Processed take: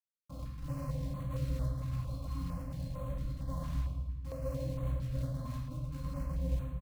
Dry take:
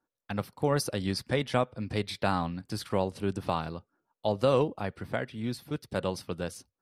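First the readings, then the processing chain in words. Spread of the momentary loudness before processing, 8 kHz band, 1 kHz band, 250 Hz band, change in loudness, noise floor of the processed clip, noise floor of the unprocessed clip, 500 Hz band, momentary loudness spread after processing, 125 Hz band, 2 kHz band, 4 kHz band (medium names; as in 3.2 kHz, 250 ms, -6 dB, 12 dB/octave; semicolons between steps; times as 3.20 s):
10 LU, -14.5 dB, -16.5 dB, -9.5 dB, -7.0 dB, -47 dBFS, under -85 dBFS, -16.0 dB, 5 LU, 0.0 dB, -20.0 dB, -19.0 dB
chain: treble shelf 11 kHz -6.5 dB; de-hum 258.3 Hz, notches 6; in parallel at -2 dB: compression 12:1, threshold -35 dBFS, peak gain reduction 16 dB; on the sum: Schmitt trigger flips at -34 dBFS; static phaser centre 930 Hz, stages 4; pitch-class resonator C, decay 0.13 s; short-mantissa float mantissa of 2-bit; on a send: feedback delay 110 ms, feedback 52%, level -11 dB; on the sum: simulated room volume 620 m³, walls mixed, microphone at 2.2 m; step-sequenced notch 4.4 Hz 440–5100 Hz; trim -2 dB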